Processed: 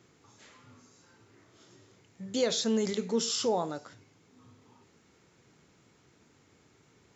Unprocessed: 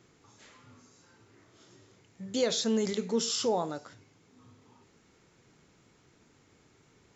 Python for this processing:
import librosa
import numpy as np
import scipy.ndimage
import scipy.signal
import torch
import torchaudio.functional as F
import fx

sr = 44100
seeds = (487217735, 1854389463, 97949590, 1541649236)

y = scipy.signal.sosfilt(scipy.signal.butter(2, 54.0, 'highpass', fs=sr, output='sos'), x)